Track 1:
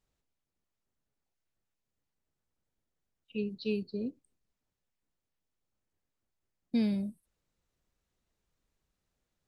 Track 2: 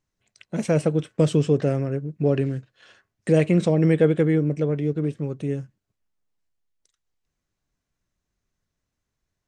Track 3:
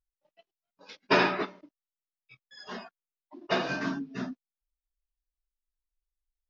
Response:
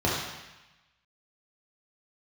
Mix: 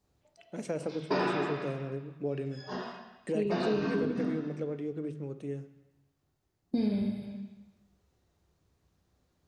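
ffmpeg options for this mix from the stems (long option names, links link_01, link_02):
-filter_complex "[0:a]volume=-0.5dB,asplit=2[link_01][link_02];[link_02]volume=-6.5dB[link_03];[1:a]highpass=frequency=200:poles=1,volume=-11dB,asplit=2[link_04][link_05];[link_05]volume=-23dB[link_06];[2:a]volume=-9.5dB,asplit=2[link_07][link_08];[link_08]volume=-3.5dB[link_09];[3:a]atrim=start_sample=2205[link_10];[link_03][link_06][link_09]amix=inputs=3:normalize=0[link_11];[link_11][link_10]afir=irnorm=-1:irlink=0[link_12];[link_01][link_04][link_07][link_12]amix=inputs=4:normalize=0,acompressor=threshold=-30dB:ratio=2.5"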